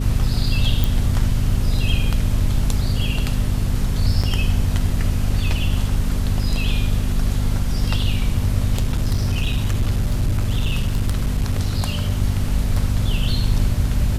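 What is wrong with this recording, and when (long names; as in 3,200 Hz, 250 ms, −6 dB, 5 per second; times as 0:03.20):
mains hum 50 Hz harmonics 5 −23 dBFS
0:00.84: click
0:04.23–0:04.24: drop-out 5.8 ms
0:08.75–0:12.10: clipping −14.5 dBFS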